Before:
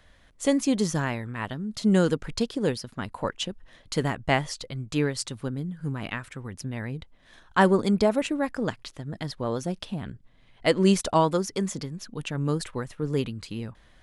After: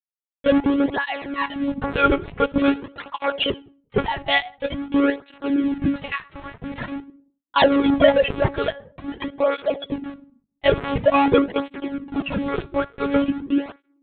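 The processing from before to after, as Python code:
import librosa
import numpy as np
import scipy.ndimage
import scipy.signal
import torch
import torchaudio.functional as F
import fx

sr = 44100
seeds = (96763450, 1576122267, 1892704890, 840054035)

y = fx.sine_speech(x, sr)
y = fx.peak_eq(y, sr, hz=2100.0, db=-6.0, octaves=1.3)
y = fx.leveller(y, sr, passes=5)
y = np.where(np.abs(y) >= 10.0 ** (-28.0 / 20.0), y, 0.0)
y = fx.room_shoebox(y, sr, seeds[0], volume_m3=440.0, walls='furnished', distance_m=0.54)
y = fx.lpc_monotone(y, sr, seeds[1], pitch_hz=280.0, order=8)
y = fx.flanger_cancel(y, sr, hz=0.47, depth_ms=4.3)
y = y * librosa.db_to_amplitude(-1.0)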